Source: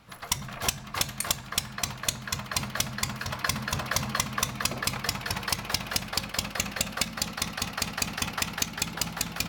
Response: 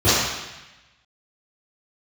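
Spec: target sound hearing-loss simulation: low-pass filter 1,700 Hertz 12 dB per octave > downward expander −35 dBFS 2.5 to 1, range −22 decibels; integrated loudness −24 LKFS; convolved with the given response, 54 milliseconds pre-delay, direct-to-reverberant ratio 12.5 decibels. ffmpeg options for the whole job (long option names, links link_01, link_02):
-filter_complex "[0:a]asplit=2[link_01][link_02];[1:a]atrim=start_sample=2205,adelay=54[link_03];[link_02][link_03]afir=irnorm=-1:irlink=0,volume=-36dB[link_04];[link_01][link_04]amix=inputs=2:normalize=0,lowpass=1700,agate=range=-22dB:threshold=-35dB:ratio=2.5,volume=11.5dB"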